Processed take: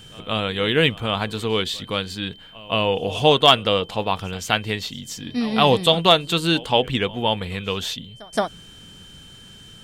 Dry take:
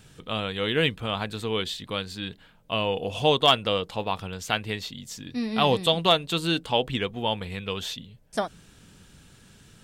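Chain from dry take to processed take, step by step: reverse echo 0.171 s -21 dB; whine 3100 Hz -50 dBFS; gain +5.5 dB

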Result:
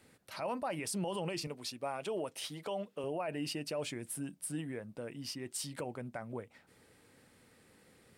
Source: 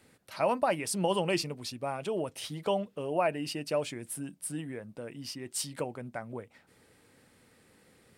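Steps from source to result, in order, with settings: 1.47–3.04 HPF 300 Hz 6 dB/oct; limiter -27 dBFS, peak gain reduction 11 dB; gain -1.5 dB

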